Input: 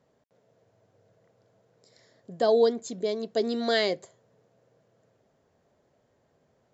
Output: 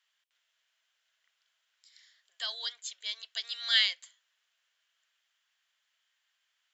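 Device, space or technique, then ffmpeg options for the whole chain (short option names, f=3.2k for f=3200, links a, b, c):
headphones lying on a table: -af "highpass=f=1.5k:w=0.5412,highpass=f=1.5k:w=1.3066,equalizer=f=3.1k:t=o:w=0.55:g=10.5"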